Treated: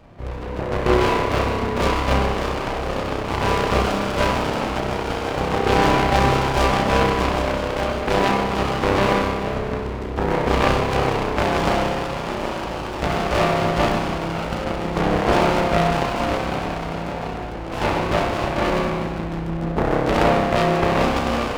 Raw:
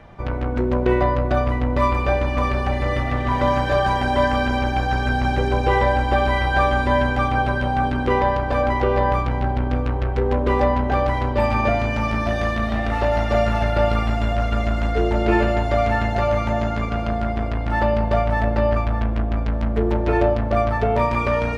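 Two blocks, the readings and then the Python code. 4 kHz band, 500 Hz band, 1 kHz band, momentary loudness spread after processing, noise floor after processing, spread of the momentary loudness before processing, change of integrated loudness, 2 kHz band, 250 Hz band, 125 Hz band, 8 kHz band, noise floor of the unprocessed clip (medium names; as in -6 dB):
+6.0 dB, 0.0 dB, 0.0 dB, 9 LU, -28 dBFS, 4 LU, -0.5 dB, 0.0 dB, +0.5 dB, -3.0 dB, no reading, -24 dBFS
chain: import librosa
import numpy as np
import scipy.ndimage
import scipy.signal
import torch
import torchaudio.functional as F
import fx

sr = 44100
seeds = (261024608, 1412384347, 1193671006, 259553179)

y = fx.cheby_harmonics(x, sr, harmonics=(4, 7), levels_db=(-14, -12), full_scale_db=-5.0)
y = fx.rev_spring(y, sr, rt60_s=1.6, pass_ms=(30,), chirp_ms=45, drr_db=-1.5)
y = fx.running_max(y, sr, window=17)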